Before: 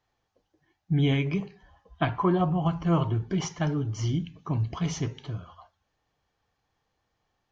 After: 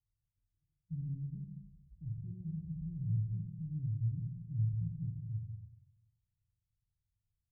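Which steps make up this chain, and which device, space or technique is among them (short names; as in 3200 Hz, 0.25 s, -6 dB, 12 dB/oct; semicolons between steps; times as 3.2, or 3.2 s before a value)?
club heard from the street (limiter -20.5 dBFS, peak gain reduction 8 dB; LPF 130 Hz 24 dB/oct; reverb RT60 0.90 s, pre-delay 11 ms, DRR 0 dB); gain -5.5 dB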